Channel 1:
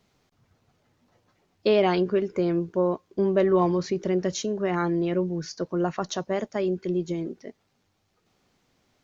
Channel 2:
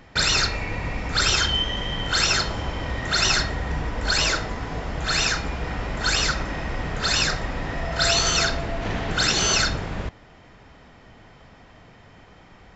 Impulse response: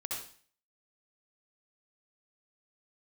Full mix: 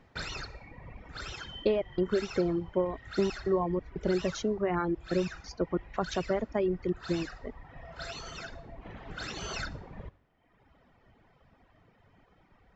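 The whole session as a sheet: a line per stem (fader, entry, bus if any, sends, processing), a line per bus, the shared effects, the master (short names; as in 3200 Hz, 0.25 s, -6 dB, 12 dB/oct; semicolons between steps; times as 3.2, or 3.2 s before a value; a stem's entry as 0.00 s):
+0.5 dB, 0.00 s, no send, compressor, threshold -23 dBFS, peak gain reduction 7.5 dB; step gate "xxxxxx.x.xx." 91 bpm -24 dB
-12.5 dB, 0.00 s, send -9.5 dB, auto duck -7 dB, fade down 0.75 s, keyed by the first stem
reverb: on, RT60 0.45 s, pre-delay 59 ms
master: reverb removal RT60 1.2 s; LPF 2100 Hz 6 dB/oct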